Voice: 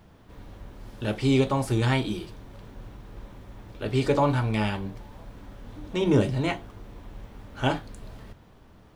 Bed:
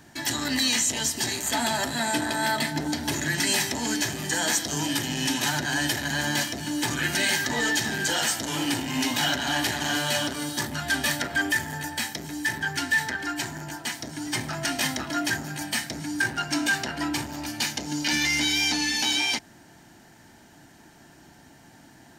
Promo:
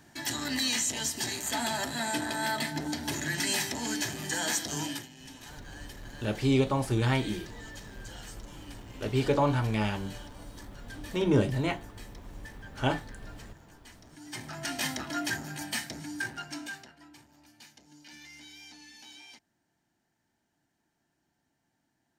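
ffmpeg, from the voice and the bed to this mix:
ffmpeg -i stem1.wav -i stem2.wav -filter_complex "[0:a]adelay=5200,volume=-3dB[link_01];[1:a]volume=11.5dB,afade=type=out:start_time=4.81:duration=0.28:silence=0.141254,afade=type=in:start_time=14.03:duration=0.82:silence=0.141254,afade=type=out:start_time=15.77:duration=1.19:silence=0.0944061[link_02];[link_01][link_02]amix=inputs=2:normalize=0" out.wav

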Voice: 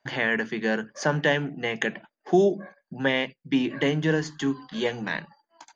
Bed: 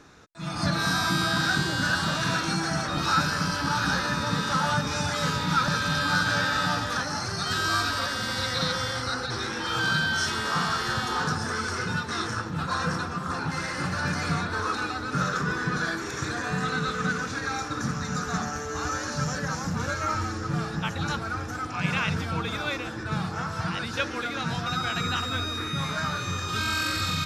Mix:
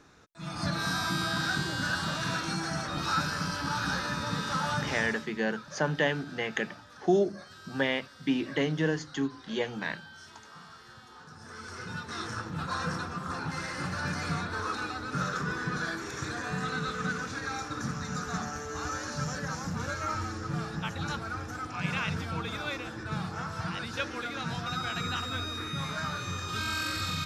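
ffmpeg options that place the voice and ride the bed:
ffmpeg -i stem1.wav -i stem2.wav -filter_complex "[0:a]adelay=4750,volume=-4.5dB[link_01];[1:a]volume=13dB,afade=type=out:start_time=4.84:duration=0.42:silence=0.125893,afade=type=in:start_time=11.3:duration=1.19:silence=0.11885[link_02];[link_01][link_02]amix=inputs=2:normalize=0" out.wav

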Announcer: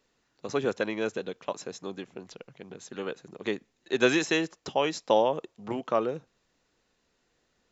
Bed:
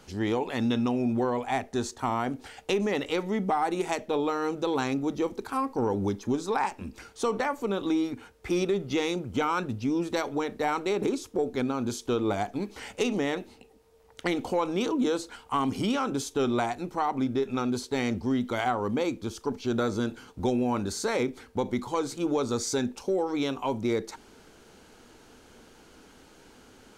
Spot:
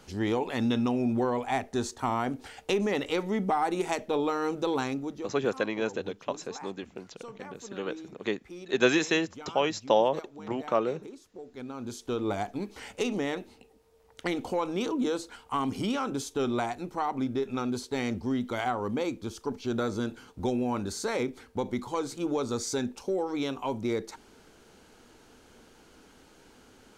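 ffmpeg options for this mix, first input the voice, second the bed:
ffmpeg -i stem1.wav -i stem2.wav -filter_complex "[0:a]adelay=4800,volume=0dB[link_01];[1:a]volume=14dB,afade=type=out:start_time=4.7:duration=0.65:silence=0.149624,afade=type=in:start_time=11.48:duration=0.83:silence=0.188365[link_02];[link_01][link_02]amix=inputs=2:normalize=0" out.wav

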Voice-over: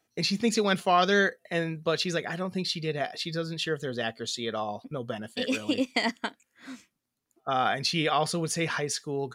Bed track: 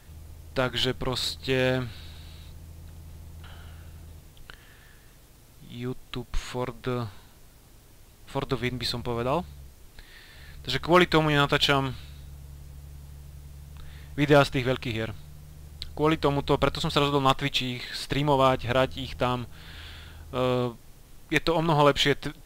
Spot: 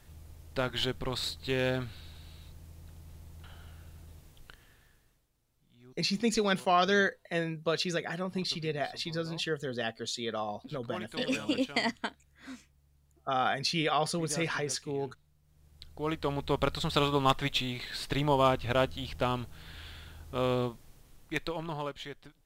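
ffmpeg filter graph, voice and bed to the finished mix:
ffmpeg -i stem1.wav -i stem2.wav -filter_complex "[0:a]adelay=5800,volume=-3dB[link_01];[1:a]volume=13.5dB,afade=type=out:start_time=4.31:duration=0.96:silence=0.133352,afade=type=in:start_time=15.42:duration=1.47:silence=0.112202,afade=type=out:start_time=20.62:duration=1.33:silence=0.158489[link_02];[link_01][link_02]amix=inputs=2:normalize=0" out.wav

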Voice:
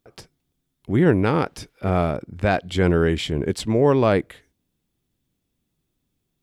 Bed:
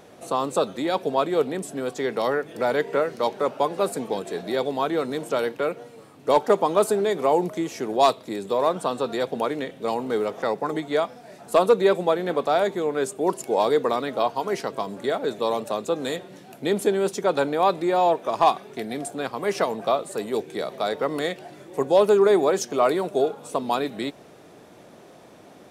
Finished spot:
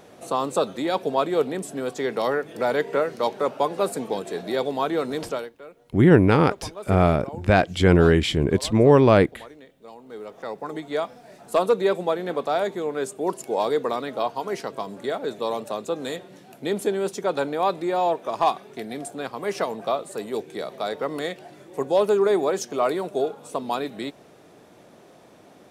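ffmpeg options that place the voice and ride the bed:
ffmpeg -i stem1.wav -i stem2.wav -filter_complex "[0:a]adelay=5050,volume=2.5dB[link_01];[1:a]volume=15.5dB,afade=type=out:start_time=5.24:duration=0.26:silence=0.125893,afade=type=in:start_time=10.02:duration=1.06:silence=0.16788[link_02];[link_01][link_02]amix=inputs=2:normalize=0" out.wav

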